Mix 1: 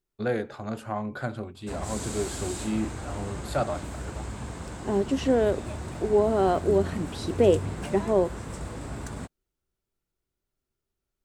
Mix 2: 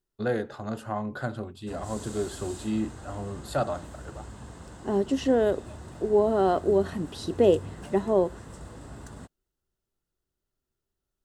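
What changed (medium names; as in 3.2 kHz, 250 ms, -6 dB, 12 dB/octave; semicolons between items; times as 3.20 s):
background -7.0 dB; master: add band-stop 2.3 kHz, Q 5.7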